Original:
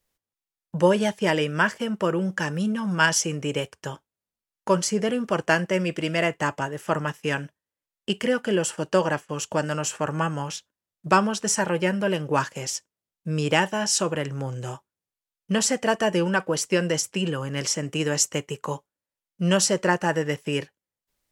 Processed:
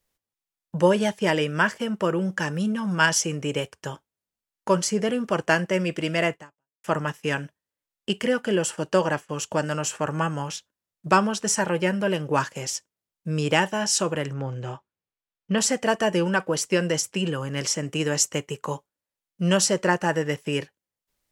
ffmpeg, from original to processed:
-filter_complex "[0:a]asettb=1/sr,asplit=3[s0][s1][s2];[s0]atrim=end=14.334[s3];[s1]atrim=start=14.33:end=15.58,asetpts=PTS-STARTPTS,afade=t=in:d=0.004:c=qsin,afade=t=out:st=1.246:d=0.004:c=qsin,lowpass=3700[s4];[s2]atrim=start=15.576[s5];[s3][s4]acrossfade=d=0.004:c1=hsin:c2=qsin[s6];[s6][s5]acrossfade=d=0.004:c1=qsin:c2=hsin,asplit=2[s7][s8];[s7]atrim=end=6.84,asetpts=PTS-STARTPTS,afade=t=out:st=6.34:d=0.5:c=exp[s9];[s8]atrim=start=6.84,asetpts=PTS-STARTPTS,afade=t=in:d=0.004:c=hsin[s10];[s9][s10]concat=n=2:v=0:a=1"

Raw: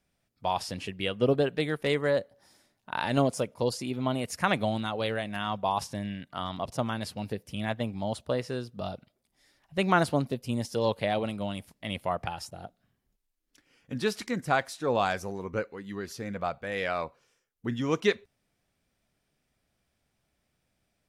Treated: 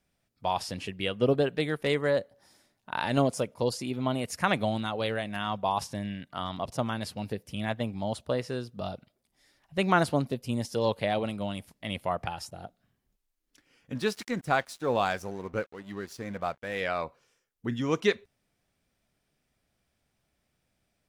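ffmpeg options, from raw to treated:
-filter_complex "[0:a]asettb=1/sr,asplit=3[s0][s1][s2];[s0]atrim=end=13.954[s3];[s1]atrim=start=13.95:end=16.81,asetpts=PTS-STARTPTS,afade=t=in:d=0.004:c=qsin,afade=t=out:st=2.856:d=0.004:c=qsin,aeval=exprs='sgn(val(0))*max(abs(val(0))-0.00316,0)':c=same[s4];[s2]atrim=start=16.806[s5];[s3][s4]acrossfade=d=0.004:c1=hsin:c2=qsin[s6];[s6][s5]acrossfade=d=0.004:c1=qsin:c2=hsin"

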